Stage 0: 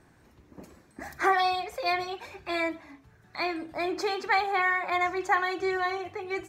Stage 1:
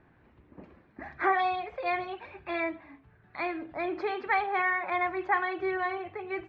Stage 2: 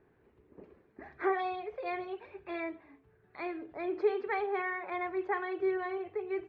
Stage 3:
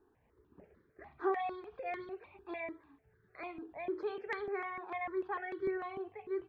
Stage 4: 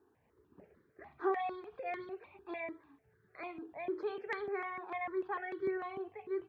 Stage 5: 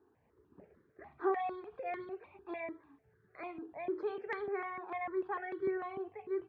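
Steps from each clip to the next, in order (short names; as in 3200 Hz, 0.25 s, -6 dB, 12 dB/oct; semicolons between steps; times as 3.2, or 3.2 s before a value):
LPF 3000 Hz 24 dB/oct; gain -2 dB
bell 420 Hz +14 dB 0.44 oct; gain -8.5 dB
step phaser 6.7 Hz 580–2600 Hz; gain -1.5 dB
HPF 85 Hz
high shelf 3600 Hz -11 dB; gain +1 dB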